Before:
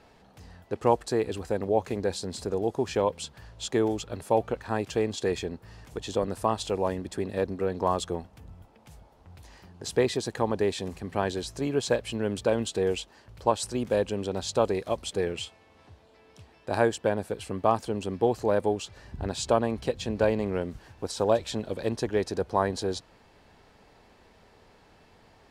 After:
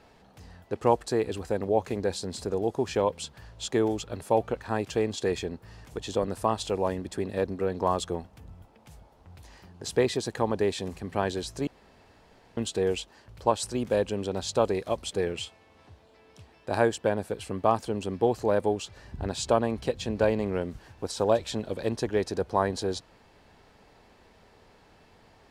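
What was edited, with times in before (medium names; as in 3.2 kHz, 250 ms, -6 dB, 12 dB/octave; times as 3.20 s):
11.67–12.57 s: room tone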